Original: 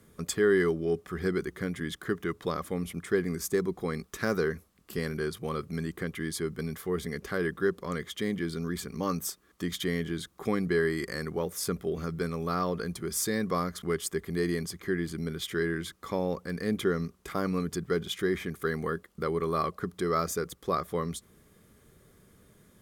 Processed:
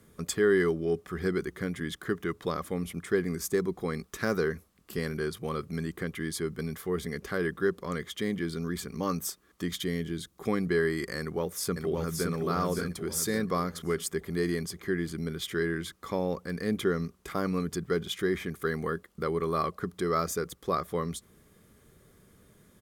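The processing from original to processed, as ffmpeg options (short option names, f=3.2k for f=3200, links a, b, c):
-filter_complex "[0:a]asettb=1/sr,asplit=3[a][b][c];[a]atrim=end=9.824[d];[b]atrim=start=9.82:end=10.44,asetpts=PTS-STARTPTS,afade=t=in:d=0.004:c=qsin,afade=t=out:st=0.616:d=0.004:c=qsin,equalizer=f=1.2k:w=0.59:g=-6[e];[c]atrim=start=10.436[f];[d][e]acrossfade=d=0.004:c1=hsin:c2=qsin[g];[g][f]acrossfade=d=0.004:c1=qsin:c2=hsin,asplit=2[h][i];[i]afade=t=in:st=11.19:d=0.01,afade=t=out:st=12.31:d=0.01,aecho=0:1:570|1140|1710|2280|2850|3420:0.707946|0.318576|0.143359|0.0645116|0.0290302|0.0130636[j];[h][j]amix=inputs=2:normalize=0"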